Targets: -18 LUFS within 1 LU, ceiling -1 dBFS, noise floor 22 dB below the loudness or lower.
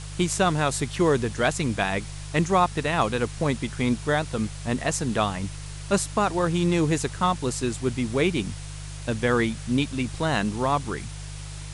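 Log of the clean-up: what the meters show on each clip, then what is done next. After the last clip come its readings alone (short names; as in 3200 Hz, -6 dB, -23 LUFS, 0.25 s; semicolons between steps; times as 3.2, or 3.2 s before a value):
hum 50 Hz; harmonics up to 150 Hz; hum level -34 dBFS; noise floor -37 dBFS; noise floor target -47 dBFS; loudness -25.0 LUFS; peak -7.5 dBFS; loudness target -18.0 LUFS
-> de-hum 50 Hz, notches 3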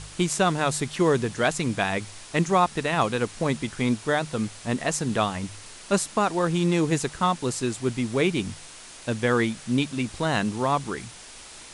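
hum none; noise floor -44 dBFS; noise floor target -48 dBFS
-> denoiser 6 dB, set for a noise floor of -44 dBFS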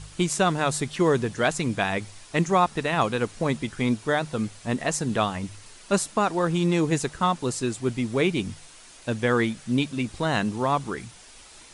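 noise floor -49 dBFS; loudness -25.5 LUFS; peak -7.5 dBFS; loudness target -18.0 LUFS
-> gain +7.5 dB; limiter -1 dBFS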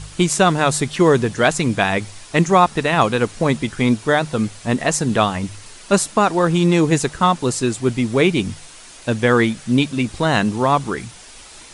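loudness -18.0 LUFS; peak -1.0 dBFS; noise floor -41 dBFS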